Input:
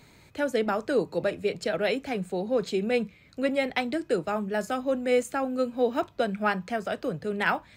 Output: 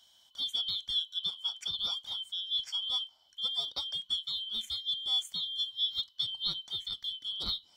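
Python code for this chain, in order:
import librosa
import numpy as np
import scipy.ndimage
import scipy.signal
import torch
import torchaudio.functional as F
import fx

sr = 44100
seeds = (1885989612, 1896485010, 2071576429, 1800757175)

y = fx.band_shuffle(x, sr, order='2413')
y = fx.tone_stack(y, sr, knobs='5-5-5')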